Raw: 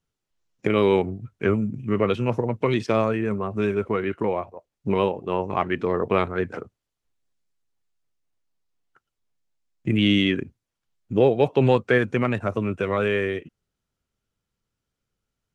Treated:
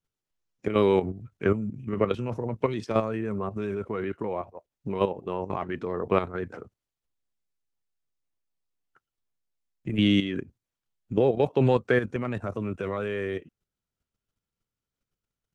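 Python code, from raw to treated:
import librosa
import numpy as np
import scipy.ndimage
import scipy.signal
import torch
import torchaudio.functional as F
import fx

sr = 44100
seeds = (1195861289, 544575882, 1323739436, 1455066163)

y = fx.dynamic_eq(x, sr, hz=2500.0, q=1.4, threshold_db=-43.0, ratio=4.0, max_db=-4)
y = fx.level_steps(y, sr, step_db=10)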